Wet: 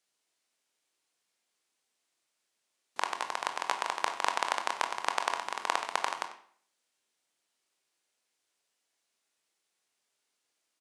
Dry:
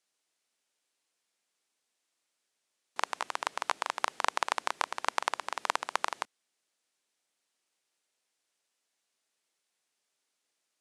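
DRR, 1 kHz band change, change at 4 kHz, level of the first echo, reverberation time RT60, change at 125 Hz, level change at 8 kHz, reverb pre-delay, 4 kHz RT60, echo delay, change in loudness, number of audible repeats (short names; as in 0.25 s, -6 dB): 5.5 dB, +1.0 dB, +1.0 dB, -15.5 dB, 0.55 s, n/a, +0.5 dB, 20 ms, 0.45 s, 94 ms, +0.5 dB, 1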